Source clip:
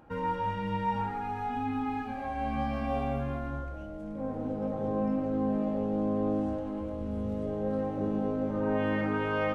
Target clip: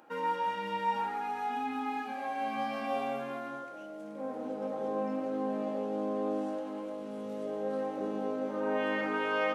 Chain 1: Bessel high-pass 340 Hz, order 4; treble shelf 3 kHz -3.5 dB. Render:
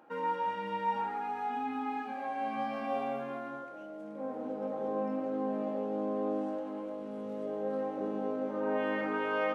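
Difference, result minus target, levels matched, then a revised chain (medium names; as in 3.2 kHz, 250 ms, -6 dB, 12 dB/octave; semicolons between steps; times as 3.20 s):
8 kHz band -8.5 dB
Bessel high-pass 340 Hz, order 4; treble shelf 3 kHz +7 dB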